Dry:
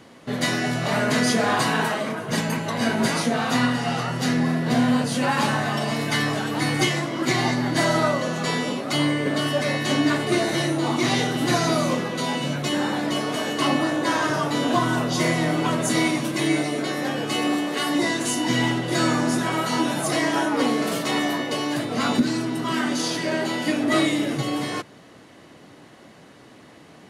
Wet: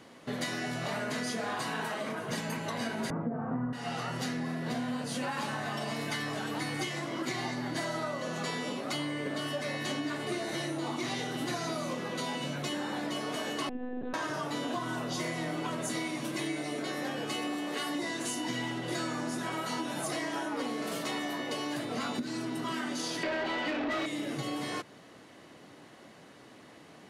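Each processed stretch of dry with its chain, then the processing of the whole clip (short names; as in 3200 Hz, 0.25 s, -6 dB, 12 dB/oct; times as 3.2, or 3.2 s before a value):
3.1–3.73 LPF 1500 Hz 24 dB/oct + tilt -4 dB/oct
13.69–14.14 running mean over 42 samples + monotone LPC vocoder at 8 kHz 250 Hz
23.23–24.06 LPF 4400 Hz 24 dB/oct + overdrive pedal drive 22 dB, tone 2200 Hz, clips at -9 dBFS
whole clip: low shelf 160 Hz -5.5 dB; compressor, threshold -27 dBFS; gain -4.5 dB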